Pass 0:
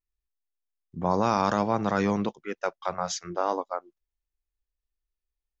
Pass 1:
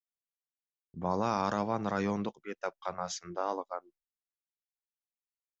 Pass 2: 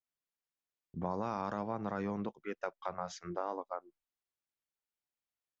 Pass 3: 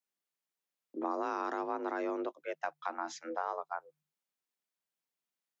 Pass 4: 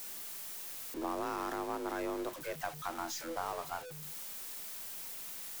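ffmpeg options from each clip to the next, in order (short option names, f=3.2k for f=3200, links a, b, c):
-af "agate=range=-33dB:threshold=-50dB:ratio=3:detection=peak,volume=-6.5dB"
-af "highshelf=f=4.8k:g=-8.5,acompressor=threshold=-38dB:ratio=2.5,adynamicequalizer=threshold=0.00141:dfrequency=2300:dqfactor=0.7:tfrequency=2300:tqfactor=0.7:attack=5:release=100:ratio=0.375:range=3:mode=cutabove:tftype=highshelf,volume=2.5dB"
-af "afreqshift=150,volume=1.5dB"
-af "aeval=exprs='val(0)+0.5*0.0119*sgn(val(0))':c=same,crystalizer=i=1:c=0,aeval=exprs='0.119*(cos(1*acos(clip(val(0)/0.119,-1,1)))-cos(1*PI/2))+0.00596*(cos(6*acos(clip(val(0)/0.119,-1,1)))-cos(6*PI/2))':c=same,volume=-4dB"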